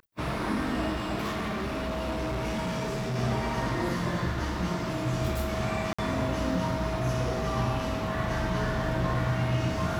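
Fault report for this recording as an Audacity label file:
1.250000	3.160000	clipping −27.5 dBFS
5.930000	5.990000	drop-out 55 ms

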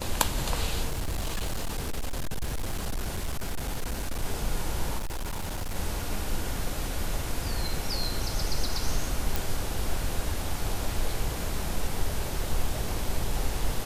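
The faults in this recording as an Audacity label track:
0.890000	4.240000	clipping −26 dBFS
4.980000	5.760000	clipping −28.5 dBFS
9.360000	9.360000	click

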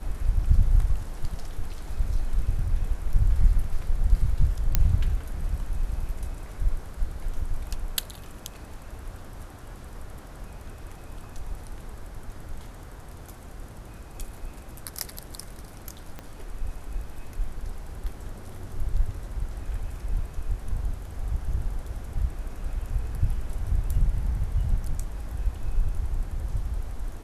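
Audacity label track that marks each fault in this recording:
4.750000	4.750000	click −5 dBFS
16.190000	16.190000	click −22 dBFS

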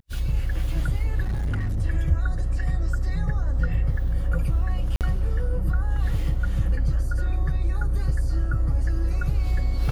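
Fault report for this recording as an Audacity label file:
1.220000	1.810000	clipping −22 dBFS
4.960000	5.010000	drop-out 48 ms

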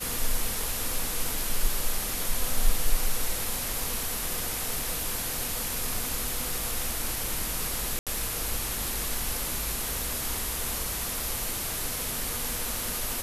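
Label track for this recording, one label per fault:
7.990000	8.070000	drop-out 77 ms

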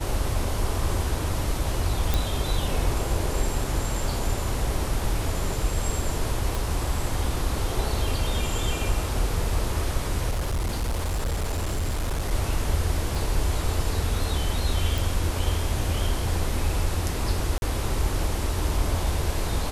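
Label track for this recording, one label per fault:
2.140000	2.140000	click
6.550000	6.550000	click
10.300000	12.320000	clipping −22.5 dBFS
13.150000	13.150000	drop-out 2.3 ms
14.980000	14.980000	click
17.580000	17.620000	drop-out 41 ms

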